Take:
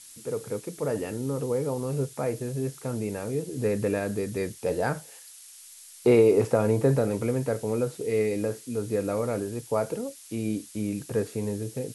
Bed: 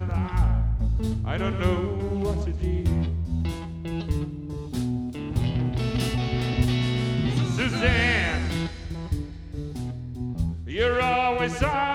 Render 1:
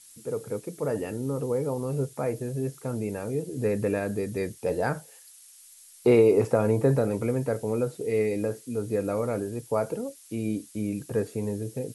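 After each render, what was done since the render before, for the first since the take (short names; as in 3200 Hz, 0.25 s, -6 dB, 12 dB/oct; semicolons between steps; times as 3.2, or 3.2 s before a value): denoiser 6 dB, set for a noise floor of -48 dBFS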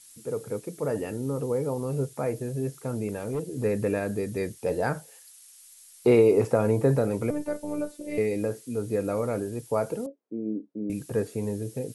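3.08–3.64 overloaded stage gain 24.5 dB; 7.3–8.18 robotiser 296 Hz; 10.06–10.9 Butterworth band-pass 340 Hz, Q 1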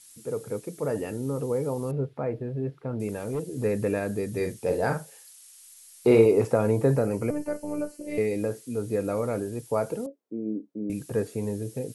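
1.91–3 air absorption 390 m; 4.29–6.26 doubler 44 ms -6 dB; 6.96–8.07 Butterworth band-stop 3600 Hz, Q 3.9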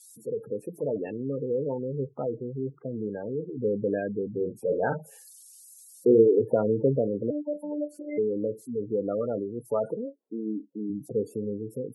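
spectral gate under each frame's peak -15 dB strong; HPF 160 Hz 12 dB/oct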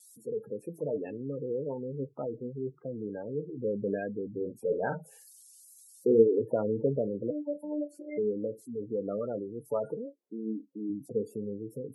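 flange 0.46 Hz, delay 3.1 ms, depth 4.2 ms, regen +69%; vibrato 2.5 Hz 23 cents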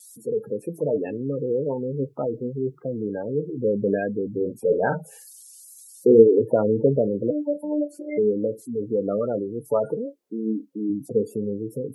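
gain +9 dB; limiter -2 dBFS, peak gain reduction 1 dB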